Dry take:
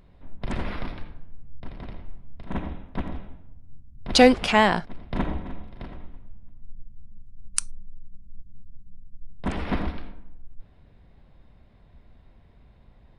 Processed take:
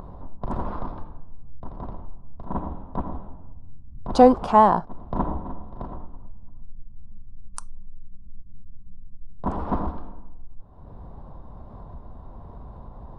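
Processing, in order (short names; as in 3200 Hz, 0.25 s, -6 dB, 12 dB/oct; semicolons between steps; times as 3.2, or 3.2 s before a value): upward compressor, threshold -27 dBFS; resonant high shelf 1500 Hz -13 dB, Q 3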